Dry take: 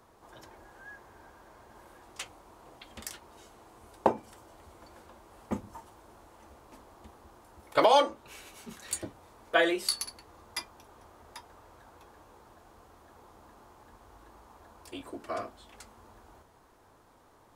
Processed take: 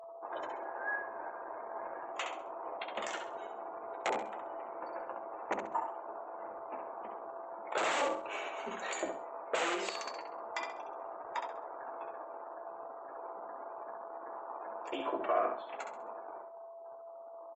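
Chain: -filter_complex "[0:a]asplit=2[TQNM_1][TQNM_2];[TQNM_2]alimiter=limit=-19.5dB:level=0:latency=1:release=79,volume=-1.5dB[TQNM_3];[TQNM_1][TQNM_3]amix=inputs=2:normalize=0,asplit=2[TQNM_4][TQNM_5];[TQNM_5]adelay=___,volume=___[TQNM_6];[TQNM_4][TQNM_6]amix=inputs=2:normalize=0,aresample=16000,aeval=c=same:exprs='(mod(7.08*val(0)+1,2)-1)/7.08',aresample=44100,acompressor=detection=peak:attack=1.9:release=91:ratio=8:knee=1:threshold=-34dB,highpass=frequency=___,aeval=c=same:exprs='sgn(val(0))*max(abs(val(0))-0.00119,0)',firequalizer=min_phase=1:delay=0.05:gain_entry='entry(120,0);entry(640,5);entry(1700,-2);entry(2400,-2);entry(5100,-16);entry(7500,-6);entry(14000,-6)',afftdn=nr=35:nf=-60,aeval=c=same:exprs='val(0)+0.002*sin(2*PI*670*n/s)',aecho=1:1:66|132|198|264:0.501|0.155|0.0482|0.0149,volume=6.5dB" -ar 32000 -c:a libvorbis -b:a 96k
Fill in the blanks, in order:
15, -12dB, 480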